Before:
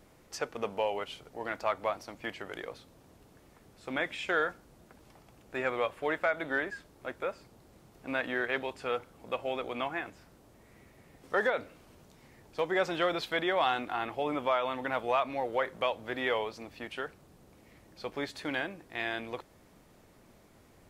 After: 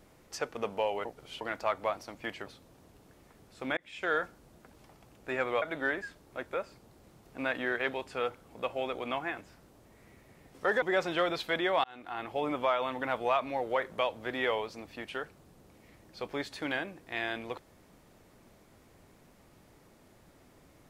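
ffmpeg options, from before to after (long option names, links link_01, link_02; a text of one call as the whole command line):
ffmpeg -i in.wav -filter_complex "[0:a]asplit=8[link_01][link_02][link_03][link_04][link_05][link_06][link_07][link_08];[link_01]atrim=end=1.052[link_09];[link_02]atrim=start=1.048:end=1.412,asetpts=PTS-STARTPTS,areverse[link_10];[link_03]atrim=start=1.408:end=2.462[link_11];[link_04]atrim=start=2.718:end=4.03,asetpts=PTS-STARTPTS,afade=type=out:start_time=1.308:duration=0.004:curve=hsin[link_12];[link_05]atrim=start=4.03:end=5.882,asetpts=PTS-STARTPTS,afade=type=in:duration=0.4[link_13];[link_06]atrim=start=6.308:end=11.512[link_14];[link_07]atrim=start=12.648:end=13.67,asetpts=PTS-STARTPTS,afade=type=out:start_time=1.018:duration=0.004:curve=hsin[link_15];[link_08]atrim=start=13.67,asetpts=PTS-STARTPTS,afade=type=in:duration=0.55[link_16];[link_09][link_10]acrossfade=duration=0.004:curve1=hsin:curve2=hsin[link_17];[link_17][link_11]acrossfade=duration=0.004:curve1=hsin:curve2=hsin[link_18];[link_12][link_13]concat=n=2:v=0:a=1[link_19];[link_18][link_19]acrossfade=duration=0.004:curve1=hsin:curve2=hsin[link_20];[link_20][link_14]acrossfade=duration=0.004:curve1=hsin:curve2=hsin[link_21];[link_15][link_16]concat=n=2:v=0:a=1[link_22];[link_21][link_22]acrossfade=duration=0.004:curve1=hsin:curve2=hsin" out.wav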